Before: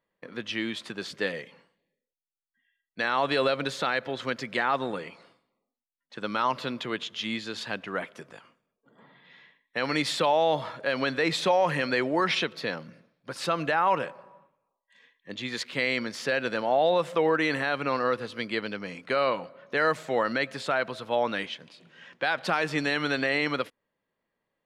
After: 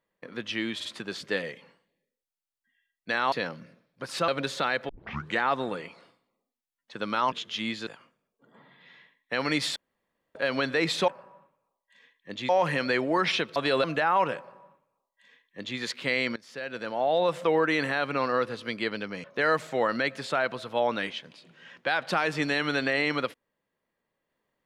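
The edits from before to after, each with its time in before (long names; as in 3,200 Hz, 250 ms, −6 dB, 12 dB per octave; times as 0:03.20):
0:00.75: stutter 0.05 s, 3 plays
0:03.22–0:03.50: swap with 0:12.59–0:13.55
0:04.11: tape start 0.49 s
0:06.54–0:06.97: remove
0:07.52–0:08.31: remove
0:10.20–0:10.79: fill with room tone
0:14.08–0:15.49: duplicate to 0:11.52
0:16.07–0:17.05: fade in, from −20 dB
0:18.95–0:19.60: remove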